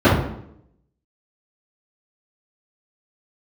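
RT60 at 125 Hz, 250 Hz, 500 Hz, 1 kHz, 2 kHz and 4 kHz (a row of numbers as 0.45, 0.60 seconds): 0.80, 0.85, 0.80, 0.70, 0.60, 0.55 seconds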